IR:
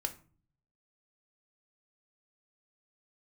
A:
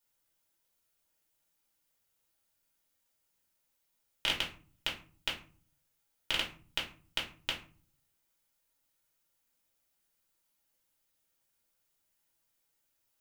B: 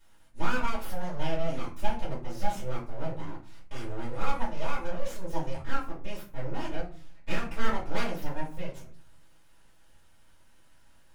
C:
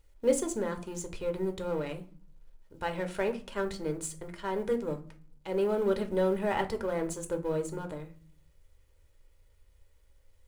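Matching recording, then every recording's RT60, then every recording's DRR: C; 0.40 s, 0.40 s, 0.40 s; -4.0 dB, -9.0 dB, 5.5 dB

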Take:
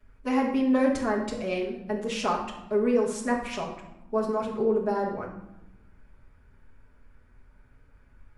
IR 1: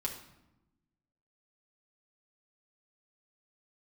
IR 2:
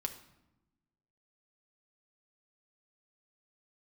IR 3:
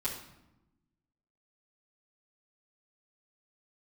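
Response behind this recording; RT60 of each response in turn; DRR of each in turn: 3; 0.95 s, 0.95 s, 0.90 s; -2.0 dB, 4.0 dB, -9.5 dB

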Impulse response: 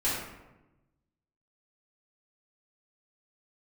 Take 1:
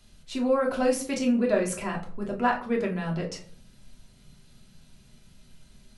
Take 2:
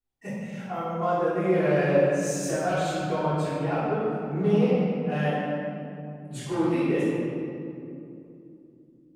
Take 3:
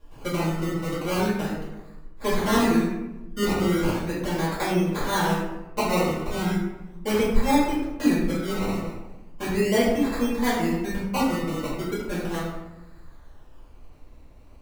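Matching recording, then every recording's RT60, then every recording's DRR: 3; no single decay rate, 2.7 s, 1.0 s; -1.0 dB, -16.0 dB, -10.0 dB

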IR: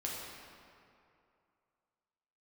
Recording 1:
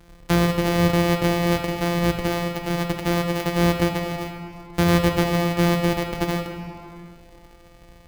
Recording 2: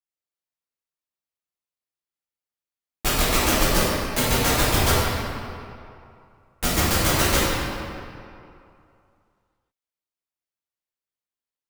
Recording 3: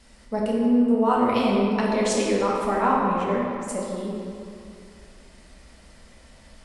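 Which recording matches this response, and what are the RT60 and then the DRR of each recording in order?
3; 2.6 s, 2.6 s, 2.6 s; 3.5 dB, -11.5 dB, -4.0 dB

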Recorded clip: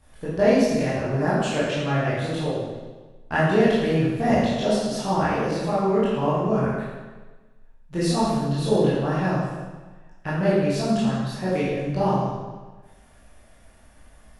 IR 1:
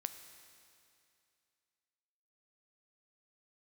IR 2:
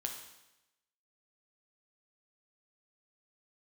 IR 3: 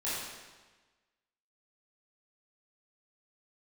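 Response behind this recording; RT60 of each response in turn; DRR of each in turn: 3; 2.5 s, 0.95 s, 1.3 s; 9.0 dB, 2.0 dB, -11.0 dB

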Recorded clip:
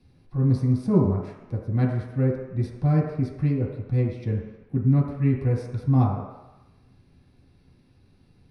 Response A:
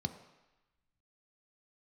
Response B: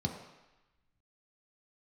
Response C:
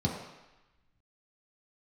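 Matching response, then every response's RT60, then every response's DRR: C; 1.0 s, 1.0 s, 1.0 s; 7.5 dB, 1.0 dB, -4.0 dB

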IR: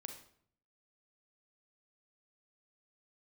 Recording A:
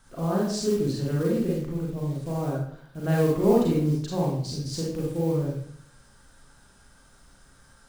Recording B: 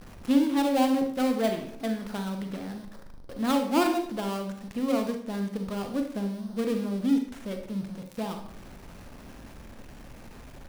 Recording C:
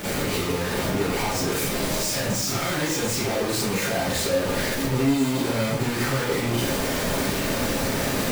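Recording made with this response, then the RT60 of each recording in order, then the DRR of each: B; 0.60 s, 0.60 s, 0.60 s; -4.5 dB, 4.5 dB, -10.5 dB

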